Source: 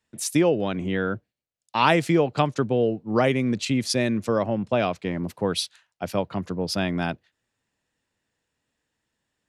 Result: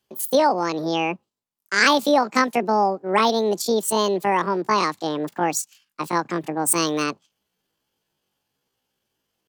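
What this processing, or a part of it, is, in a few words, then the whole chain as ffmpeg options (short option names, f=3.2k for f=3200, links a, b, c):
chipmunk voice: -filter_complex "[0:a]asplit=3[a][b][c];[a]afade=t=out:st=6.6:d=0.02[d];[b]aemphasis=mode=production:type=75kf,afade=t=in:st=6.6:d=0.02,afade=t=out:st=7.02:d=0.02[e];[c]afade=t=in:st=7.02:d=0.02[f];[d][e][f]amix=inputs=3:normalize=0,asetrate=76340,aresample=44100,atempo=0.577676,volume=2.5dB"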